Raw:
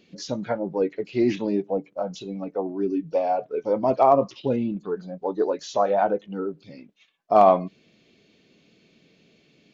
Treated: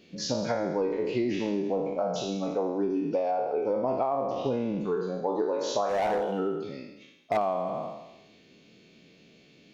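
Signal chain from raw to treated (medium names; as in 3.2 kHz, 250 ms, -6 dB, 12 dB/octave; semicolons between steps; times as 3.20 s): spectral sustain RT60 0.91 s; 3.31–4.46 s: treble shelf 4.2 kHz -9.5 dB; 5.89–7.37 s: overload inside the chain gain 17.5 dB; feedback echo behind a high-pass 81 ms, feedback 59%, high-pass 3.8 kHz, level -12 dB; compression 12:1, threshold -24 dBFS, peak gain reduction 15 dB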